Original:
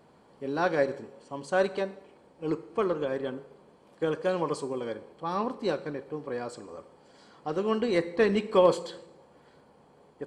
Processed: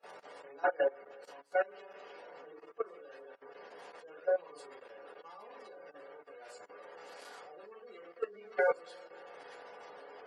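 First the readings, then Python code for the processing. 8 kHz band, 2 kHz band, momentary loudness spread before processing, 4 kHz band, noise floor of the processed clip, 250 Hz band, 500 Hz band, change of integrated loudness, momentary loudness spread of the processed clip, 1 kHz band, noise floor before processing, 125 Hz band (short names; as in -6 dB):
under -10 dB, -4.5 dB, 17 LU, -15.5 dB, -60 dBFS, -25.5 dB, -9.0 dB, -6.0 dB, 20 LU, -8.0 dB, -59 dBFS, under -30 dB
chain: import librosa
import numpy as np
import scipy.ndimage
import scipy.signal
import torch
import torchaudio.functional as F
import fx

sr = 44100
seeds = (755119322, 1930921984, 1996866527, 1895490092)

y = fx.delta_mod(x, sr, bps=64000, step_db=-26.5)
y = 10.0 ** (-19.0 / 20.0) * (np.abs((y / 10.0 ** (-19.0 / 20.0) + 3.0) % 4.0 - 2.0) - 1.0)
y = fx.room_shoebox(y, sr, seeds[0], volume_m3=140.0, walls='furnished', distance_m=4.0)
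y = fx.spec_gate(y, sr, threshold_db=-25, keep='strong')
y = scipy.signal.sosfilt(scipy.signal.butter(2, 620.0, 'highpass', fs=sr, output='sos'), y)
y = fx.high_shelf(y, sr, hz=2100.0, db=-10.0)
y = fx.echo_stepped(y, sr, ms=282, hz=920.0, octaves=0.7, feedback_pct=70, wet_db=-12)
y = fx.level_steps(y, sr, step_db=10)
y = fx.high_shelf(y, sr, hz=6100.0, db=10.0)
y = fx.upward_expand(y, sr, threshold_db=-39.0, expansion=2.5)
y = y * librosa.db_to_amplitude(-5.0)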